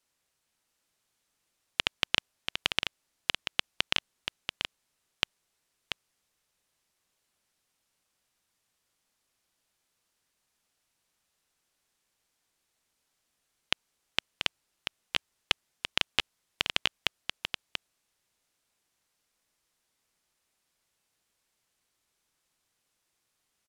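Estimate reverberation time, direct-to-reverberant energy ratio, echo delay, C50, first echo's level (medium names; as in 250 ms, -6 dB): no reverb, no reverb, 686 ms, no reverb, -7.0 dB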